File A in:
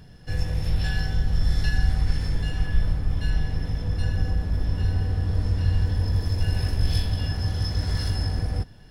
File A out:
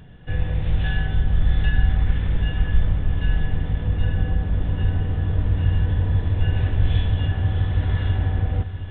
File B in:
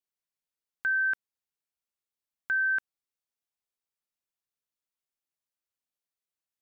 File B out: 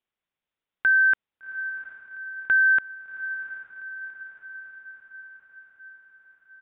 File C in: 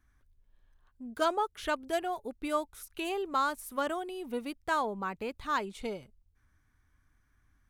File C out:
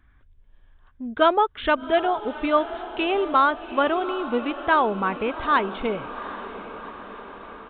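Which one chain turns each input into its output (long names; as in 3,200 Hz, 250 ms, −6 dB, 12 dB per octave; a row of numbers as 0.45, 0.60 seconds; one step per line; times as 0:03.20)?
downsampling to 8,000 Hz
feedback delay with all-pass diffusion 758 ms, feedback 62%, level −13 dB
loudness normalisation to −23 LKFS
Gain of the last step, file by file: +3.0, +8.0, +10.5 decibels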